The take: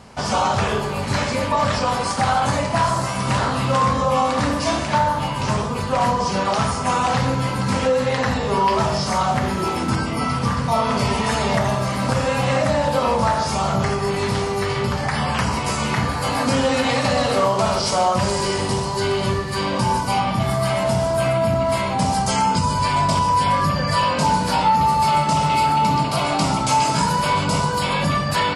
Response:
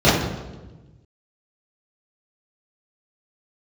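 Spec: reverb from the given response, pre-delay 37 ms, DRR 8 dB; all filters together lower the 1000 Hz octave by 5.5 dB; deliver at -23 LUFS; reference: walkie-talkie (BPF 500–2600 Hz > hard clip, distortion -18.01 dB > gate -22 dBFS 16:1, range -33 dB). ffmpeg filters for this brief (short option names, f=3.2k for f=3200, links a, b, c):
-filter_complex "[0:a]equalizer=f=1k:t=o:g=-6,asplit=2[a][b];[1:a]atrim=start_sample=2205,adelay=37[c];[b][c]afir=irnorm=-1:irlink=0,volume=-33dB[d];[a][d]amix=inputs=2:normalize=0,highpass=500,lowpass=2.6k,asoftclip=type=hard:threshold=-19dB,agate=range=-33dB:threshold=-22dB:ratio=16,volume=5.5dB"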